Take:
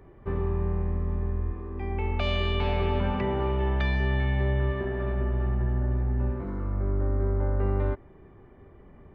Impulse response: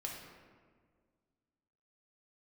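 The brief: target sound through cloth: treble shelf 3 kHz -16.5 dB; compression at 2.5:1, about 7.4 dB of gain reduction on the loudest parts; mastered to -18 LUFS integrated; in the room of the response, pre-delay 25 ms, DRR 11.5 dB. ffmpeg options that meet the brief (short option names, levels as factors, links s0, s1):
-filter_complex "[0:a]acompressor=threshold=0.0224:ratio=2.5,asplit=2[s0][s1];[1:a]atrim=start_sample=2205,adelay=25[s2];[s1][s2]afir=irnorm=-1:irlink=0,volume=0.282[s3];[s0][s3]amix=inputs=2:normalize=0,highshelf=f=3000:g=-16.5,volume=7.5"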